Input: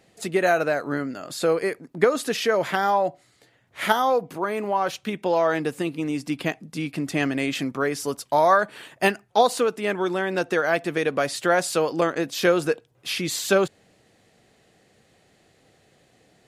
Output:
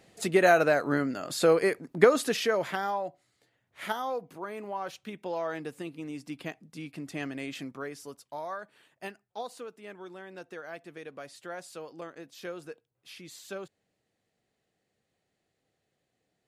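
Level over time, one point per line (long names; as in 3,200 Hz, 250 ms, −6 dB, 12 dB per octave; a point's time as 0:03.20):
0:02.10 −0.5 dB
0:03.08 −12 dB
0:07.65 −12 dB
0:08.47 −20 dB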